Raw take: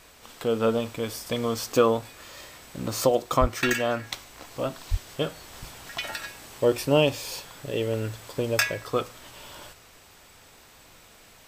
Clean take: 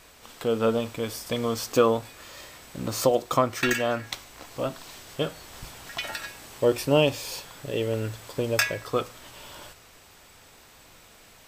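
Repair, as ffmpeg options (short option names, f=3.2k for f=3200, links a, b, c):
-filter_complex "[0:a]asplit=3[a][b][c];[a]afade=t=out:st=3.4:d=0.02[d];[b]highpass=f=140:w=0.5412,highpass=f=140:w=1.3066,afade=t=in:st=3.4:d=0.02,afade=t=out:st=3.52:d=0.02[e];[c]afade=t=in:st=3.52:d=0.02[f];[d][e][f]amix=inputs=3:normalize=0,asplit=3[g][h][i];[g]afade=t=out:st=4.9:d=0.02[j];[h]highpass=f=140:w=0.5412,highpass=f=140:w=1.3066,afade=t=in:st=4.9:d=0.02,afade=t=out:st=5.02:d=0.02[k];[i]afade=t=in:st=5.02:d=0.02[l];[j][k][l]amix=inputs=3:normalize=0"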